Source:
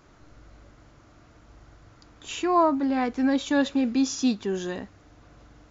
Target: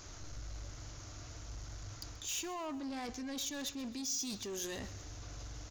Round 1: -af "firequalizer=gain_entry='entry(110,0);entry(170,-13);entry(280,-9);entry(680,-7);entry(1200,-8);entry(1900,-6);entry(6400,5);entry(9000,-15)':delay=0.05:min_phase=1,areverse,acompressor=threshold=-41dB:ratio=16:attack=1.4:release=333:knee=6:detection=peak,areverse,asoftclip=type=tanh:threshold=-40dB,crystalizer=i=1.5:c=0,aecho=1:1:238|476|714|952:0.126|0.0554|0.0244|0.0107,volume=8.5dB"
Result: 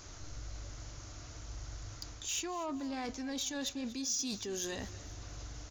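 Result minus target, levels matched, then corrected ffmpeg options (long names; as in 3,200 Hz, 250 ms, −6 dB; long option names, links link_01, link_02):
echo 107 ms late; soft clipping: distortion −8 dB
-af "firequalizer=gain_entry='entry(110,0);entry(170,-13);entry(280,-9);entry(680,-7);entry(1200,-8);entry(1900,-6);entry(6400,5);entry(9000,-15)':delay=0.05:min_phase=1,areverse,acompressor=threshold=-41dB:ratio=16:attack=1.4:release=333:knee=6:detection=peak,areverse,asoftclip=type=tanh:threshold=-46.5dB,crystalizer=i=1.5:c=0,aecho=1:1:131|262|393|524:0.126|0.0554|0.0244|0.0107,volume=8.5dB"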